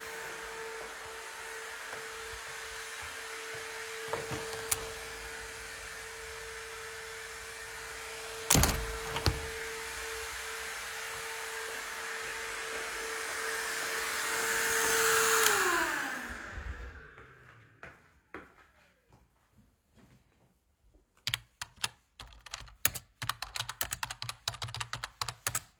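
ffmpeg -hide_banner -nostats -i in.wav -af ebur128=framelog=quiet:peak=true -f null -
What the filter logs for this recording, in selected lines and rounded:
Integrated loudness:
  I:         -34.1 LUFS
  Threshold: -45.0 LUFS
Loudness range:
  LRA:        13.5 LU
  Threshold: -54.7 LUFS
  LRA low:   -42.4 LUFS
  LRA high:  -28.9 LUFS
True peak:
  Peak:       -4.3 dBFS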